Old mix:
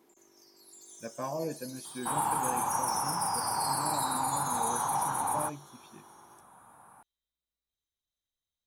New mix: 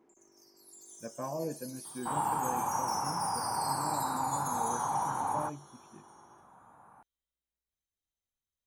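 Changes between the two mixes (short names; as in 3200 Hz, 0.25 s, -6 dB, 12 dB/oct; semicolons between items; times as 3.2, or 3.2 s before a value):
speech: add tape spacing loss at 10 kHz 27 dB; second sound: add LPF 1700 Hz 6 dB/oct; master: add bell 3800 Hz -9 dB 0.51 oct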